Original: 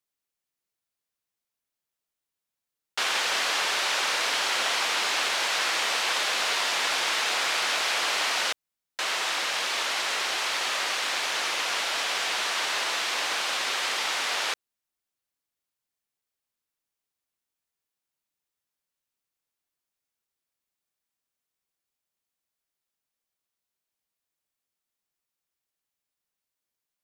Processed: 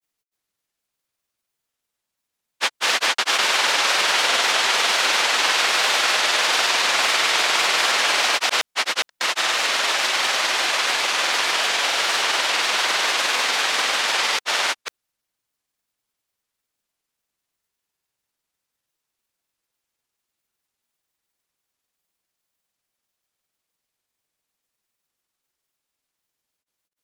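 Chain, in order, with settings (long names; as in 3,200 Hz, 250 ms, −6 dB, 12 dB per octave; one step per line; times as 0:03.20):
granular cloud, spray 537 ms, pitch spread up and down by 0 semitones
level +8.5 dB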